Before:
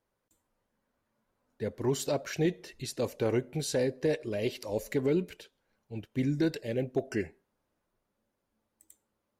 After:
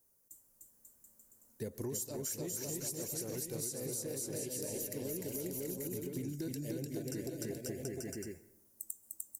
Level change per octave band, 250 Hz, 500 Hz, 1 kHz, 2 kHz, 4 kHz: -8.5 dB, -10.0 dB, -13.5 dB, -13.0 dB, -6.5 dB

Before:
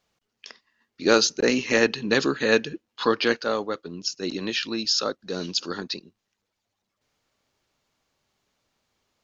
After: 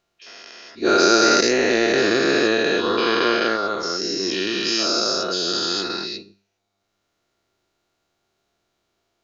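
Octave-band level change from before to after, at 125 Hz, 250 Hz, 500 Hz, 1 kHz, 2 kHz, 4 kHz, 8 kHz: +0.5 dB, +5.0 dB, +5.0 dB, +9.0 dB, +5.0 dB, +6.0 dB, no reading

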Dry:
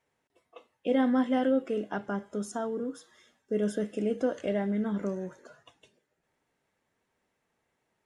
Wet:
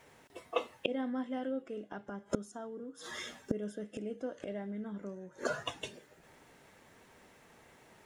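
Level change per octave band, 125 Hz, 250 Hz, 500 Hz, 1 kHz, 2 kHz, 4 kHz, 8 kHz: -8.0 dB, -10.0 dB, -8.0 dB, -6.5 dB, -2.5 dB, +3.0 dB, -1.5 dB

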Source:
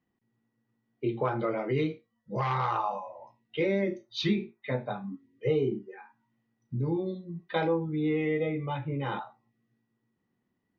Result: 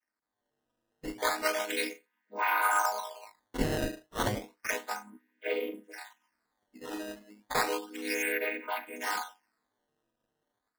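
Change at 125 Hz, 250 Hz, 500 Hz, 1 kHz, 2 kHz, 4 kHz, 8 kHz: -11.5 dB, -8.0 dB, -5.5 dB, +1.5 dB, +7.0 dB, +2.0 dB, no reading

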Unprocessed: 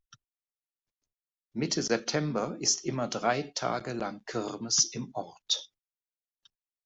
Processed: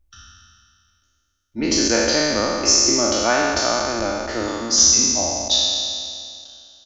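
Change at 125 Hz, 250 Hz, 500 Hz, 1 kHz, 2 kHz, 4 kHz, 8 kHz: +3.0 dB, +10.5 dB, +11.0 dB, +10.0 dB, +13.5 dB, +14.5 dB, no reading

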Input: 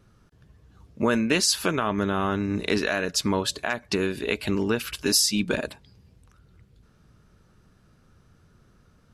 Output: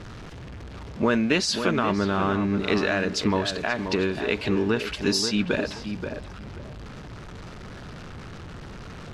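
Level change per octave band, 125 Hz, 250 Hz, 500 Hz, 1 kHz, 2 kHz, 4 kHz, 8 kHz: +2.5 dB, +2.0 dB, +2.0 dB, +1.5 dB, +1.0 dB, -1.5 dB, -7.5 dB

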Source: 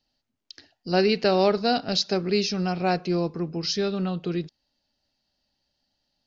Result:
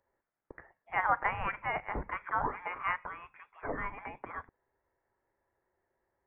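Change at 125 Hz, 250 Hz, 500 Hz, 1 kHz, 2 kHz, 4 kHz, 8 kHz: -17.5 dB, -23.0 dB, -19.0 dB, -3.5 dB, -1.0 dB, -28.0 dB, no reading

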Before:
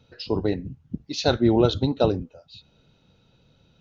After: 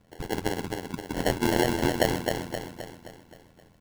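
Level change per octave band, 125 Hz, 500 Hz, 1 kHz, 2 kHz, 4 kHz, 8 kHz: -6.0 dB, -4.5 dB, +1.0 dB, +6.0 dB, -3.0 dB, no reading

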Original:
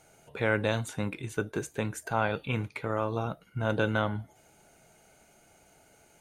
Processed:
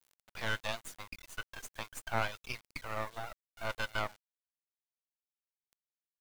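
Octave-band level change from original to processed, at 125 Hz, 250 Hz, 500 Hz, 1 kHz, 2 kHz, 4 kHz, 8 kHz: -14.5 dB, -17.0 dB, -12.0 dB, -6.0 dB, -5.0 dB, -0.5 dB, -4.0 dB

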